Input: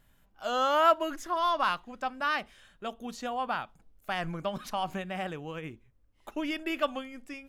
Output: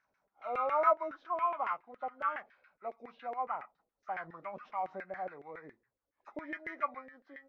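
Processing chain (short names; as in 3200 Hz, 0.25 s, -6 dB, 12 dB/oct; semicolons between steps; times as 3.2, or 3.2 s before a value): nonlinear frequency compression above 1200 Hz 1.5:1; LFO band-pass saw down 7.2 Hz 430–1900 Hz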